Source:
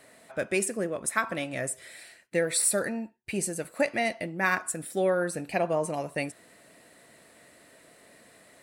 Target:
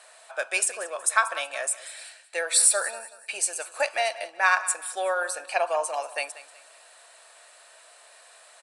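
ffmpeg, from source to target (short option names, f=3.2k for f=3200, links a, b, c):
-filter_complex "[0:a]highpass=f=710:w=0.5412,highpass=f=710:w=1.3066,equalizer=f=2k:t=o:w=0.2:g=-12.5,asplit=2[a][b];[b]aecho=0:1:186|372|558:0.15|0.0524|0.0183[c];[a][c]amix=inputs=2:normalize=0,aresample=22050,aresample=44100,volume=7dB"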